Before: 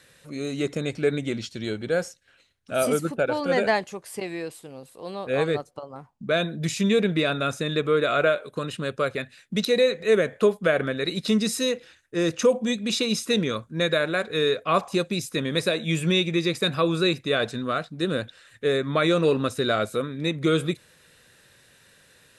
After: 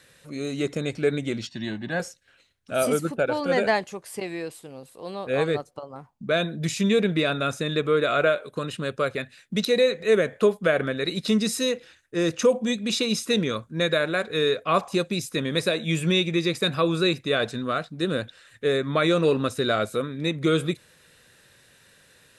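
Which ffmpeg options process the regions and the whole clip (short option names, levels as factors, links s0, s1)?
-filter_complex "[0:a]asettb=1/sr,asplit=3[s0][s1][s2];[s0]atrim=end=1.474[s3];[s1]atrim=start=1.47:end=2,asetpts=PTS-STARTPTS,afade=t=in:d=0.004:c=qsin,afade=t=out:st=0.526:d=0.004:c=qsin,highpass=160,lowpass=4200,aecho=1:1:1.1:1,atrim=end_sample=23373[s4];[s2]atrim=start=1.996[s5];[s3][s4]acrossfade=d=0.004:c1=hsin:c2=qsin[s6];[s6][s5]acrossfade=d=0.004:c1=qsin:c2=hsin"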